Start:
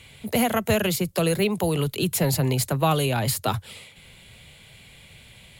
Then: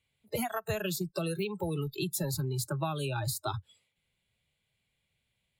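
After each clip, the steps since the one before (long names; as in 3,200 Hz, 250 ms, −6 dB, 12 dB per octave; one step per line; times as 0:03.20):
noise reduction from a noise print of the clip's start 26 dB
downward compressor, threshold −24 dBFS, peak gain reduction 8.5 dB
level −5 dB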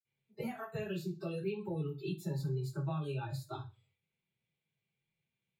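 convolution reverb RT60 0.30 s, pre-delay 46 ms
level +1 dB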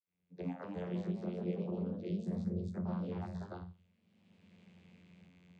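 camcorder AGC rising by 29 dB per second
channel vocoder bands 16, saw 89 Hz
delay with pitch and tempo change per echo 280 ms, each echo +2 semitones, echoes 2, each echo −6 dB
level −1 dB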